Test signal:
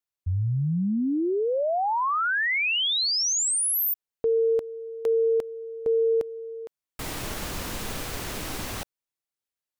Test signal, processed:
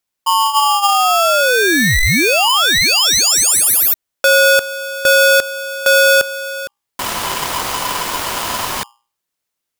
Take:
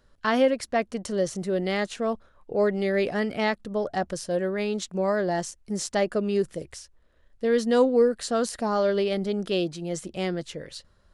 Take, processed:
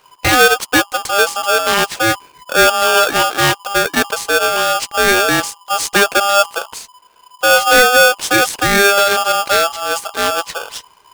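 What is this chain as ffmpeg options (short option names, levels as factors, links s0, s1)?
-af "bandreject=f=60:t=h:w=6,bandreject=f=120:t=h:w=6,bandreject=f=180:t=h:w=6,alimiter=level_in=4.47:limit=0.891:release=50:level=0:latency=1,aeval=exprs='val(0)*sgn(sin(2*PI*1000*n/s))':c=same,volume=0.891"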